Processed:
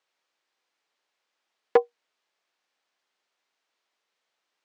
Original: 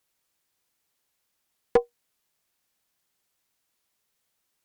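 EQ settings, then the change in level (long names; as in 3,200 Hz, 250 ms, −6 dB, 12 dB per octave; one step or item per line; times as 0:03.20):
high-pass filter 420 Hz 12 dB per octave
high-frequency loss of the air 140 metres
+4.0 dB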